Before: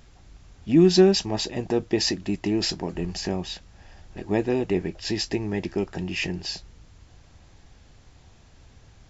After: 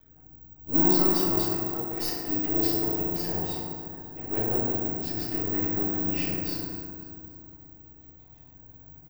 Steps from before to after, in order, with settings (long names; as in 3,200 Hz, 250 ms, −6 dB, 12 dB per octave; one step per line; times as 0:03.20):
one-sided soft clipper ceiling −18 dBFS
gate on every frequency bin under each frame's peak −25 dB strong
0:01.36–0:02.28: high-pass filter 1,200 Hz 6 dB per octave
0:04.58–0:05.34: downward compressor 2.5 to 1, threshold −31 dBFS, peak gain reduction 7 dB
half-wave rectification
repeating echo 271 ms, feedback 41%, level −19 dB
feedback delay network reverb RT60 2.5 s, low-frequency decay 1.25×, high-frequency decay 0.3×, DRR −8 dB
bad sample-rate conversion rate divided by 2×, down filtered, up zero stuff
level −7.5 dB